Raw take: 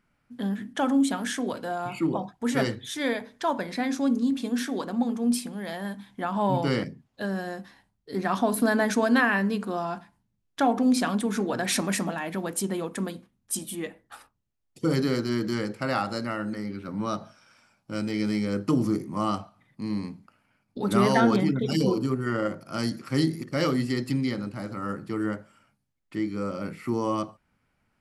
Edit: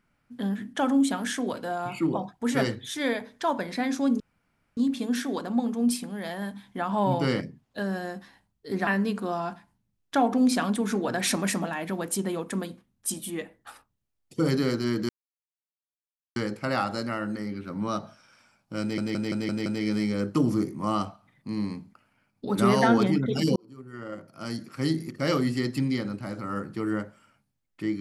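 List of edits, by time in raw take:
4.20 s: insert room tone 0.57 s
8.30–9.32 s: delete
15.54 s: insert silence 1.27 s
17.99 s: stutter 0.17 s, 6 plays
21.89–23.65 s: fade in

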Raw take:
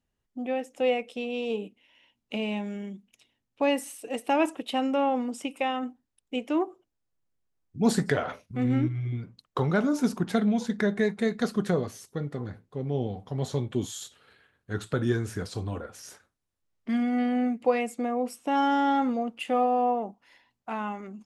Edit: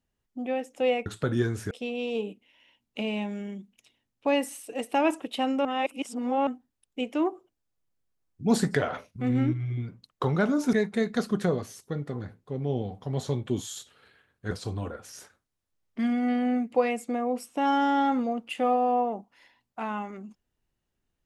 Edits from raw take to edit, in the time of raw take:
5.00–5.82 s: reverse
10.08–10.98 s: delete
14.76–15.41 s: move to 1.06 s

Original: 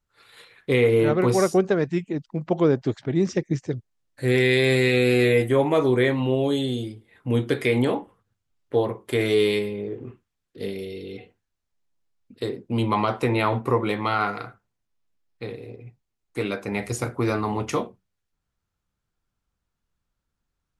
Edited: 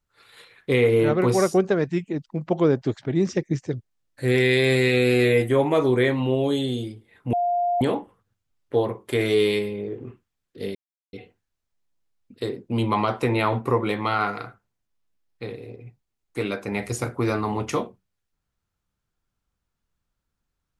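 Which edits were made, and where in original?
7.33–7.81 s: bleep 703 Hz -19.5 dBFS
10.75–11.13 s: mute

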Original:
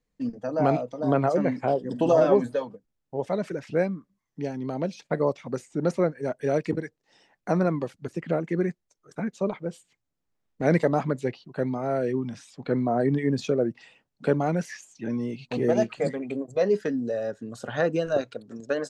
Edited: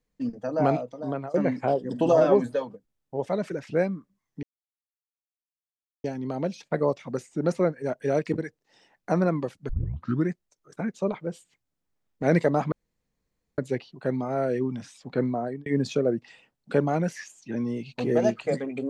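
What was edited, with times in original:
0.64–1.34 s: fade out, to -17.5 dB
4.43 s: insert silence 1.61 s
8.08 s: tape start 0.60 s
11.11 s: insert room tone 0.86 s
12.74–13.19 s: fade out

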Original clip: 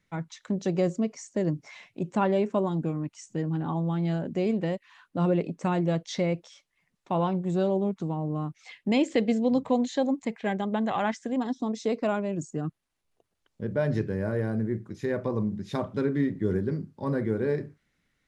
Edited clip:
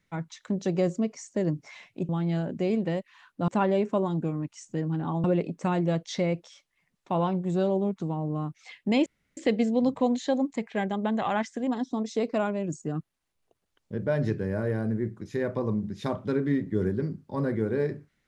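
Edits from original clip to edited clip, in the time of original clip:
3.85–5.24 s: move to 2.09 s
9.06 s: insert room tone 0.31 s

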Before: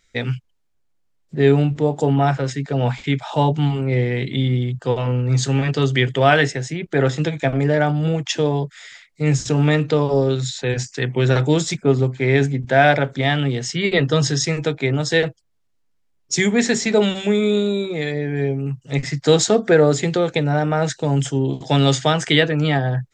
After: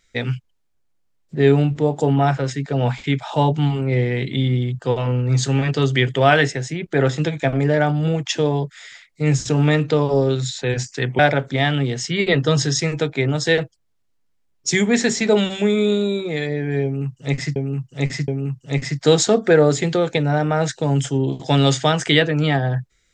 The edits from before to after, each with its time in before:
11.19–12.84 s: delete
18.49–19.21 s: loop, 3 plays

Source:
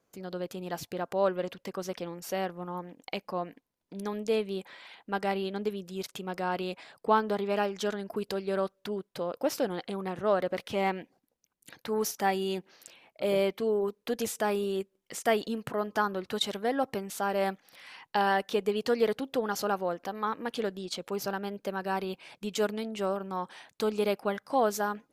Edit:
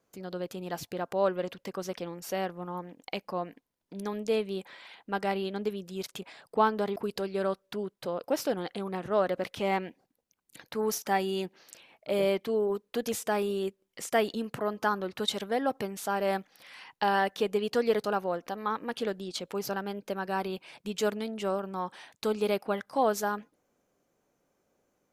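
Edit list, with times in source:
6.22–6.73 s: delete
7.47–8.09 s: delete
19.17–19.61 s: delete

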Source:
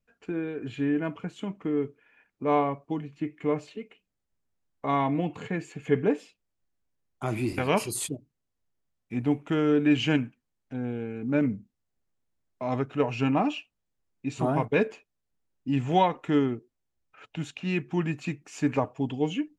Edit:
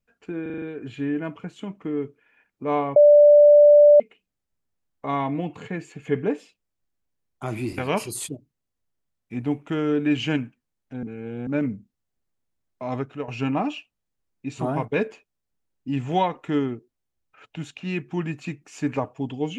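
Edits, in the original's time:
0.42 s: stutter 0.04 s, 6 plays
2.76–3.80 s: bleep 588 Hz -8.5 dBFS
10.83–11.27 s: reverse
12.81–13.08 s: fade out, to -10.5 dB

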